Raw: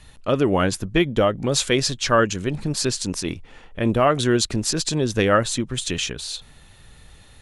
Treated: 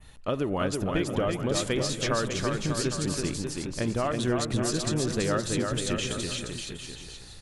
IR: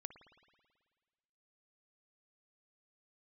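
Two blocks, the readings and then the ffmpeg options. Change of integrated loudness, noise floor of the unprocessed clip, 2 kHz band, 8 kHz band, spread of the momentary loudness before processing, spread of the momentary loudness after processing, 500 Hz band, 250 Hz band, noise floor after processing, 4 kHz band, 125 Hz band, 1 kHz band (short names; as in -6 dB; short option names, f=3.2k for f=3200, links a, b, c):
-7.0 dB, -49 dBFS, -8.0 dB, -6.0 dB, 9 LU, 6 LU, -7.0 dB, -5.5 dB, -46 dBFS, -7.0 dB, -4.5 dB, -8.5 dB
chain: -filter_complex "[0:a]asoftclip=type=hard:threshold=-7dB,acompressor=threshold=-21dB:ratio=6,aecho=1:1:330|594|805.2|974.2|1109:0.631|0.398|0.251|0.158|0.1,adynamicequalizer=threshold=0.0112:dfrequency=4800:dqfactor=0.74:tfrequency=4800:tqfactor=0.74:attack=5:release=100:ratio=0.375:range=2:mode=cutabove:tftype=bell,asplit=2[a][b];[1:a]atrim=start_sample=2205,asetrate=27783,aresample=44100[c];[b][c]afir=irnorm=-1:irlink=0,volume=-3dB[d];[a][d]amix=inputs=2:normalize=0,volume=-7dB"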